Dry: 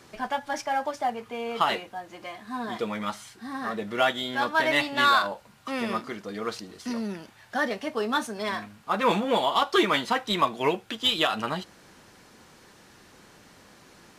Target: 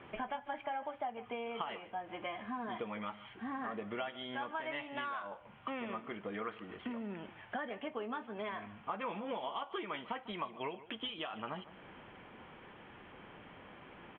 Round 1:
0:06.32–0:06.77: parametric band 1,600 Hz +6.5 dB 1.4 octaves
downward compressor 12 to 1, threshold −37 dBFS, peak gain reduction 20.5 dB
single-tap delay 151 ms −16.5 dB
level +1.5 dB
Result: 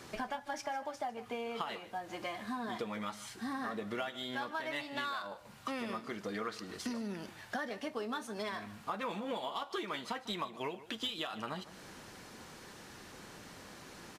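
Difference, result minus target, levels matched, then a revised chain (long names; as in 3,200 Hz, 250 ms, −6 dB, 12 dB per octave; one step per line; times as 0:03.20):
4,000 Hz band +2.5 dB
0:06.32–0:06.77: parametric band 1,600 Hz +6.5 dB 1.4 octaves
downward compressor 12 to 1, threshold −37 dBFS, peak gain reduction 20.5 dB
Chebyshev low-pass with heavy ripple 3,300 Hz, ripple 3 dB
single-tap delay 151 ms −16.5 dB
level +1.5 dB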